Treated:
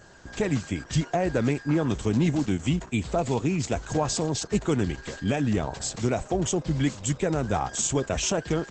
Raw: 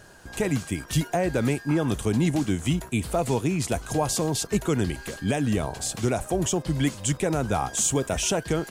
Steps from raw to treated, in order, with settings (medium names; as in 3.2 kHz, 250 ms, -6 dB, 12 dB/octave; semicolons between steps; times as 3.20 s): Opus 12 kbps 48 kHz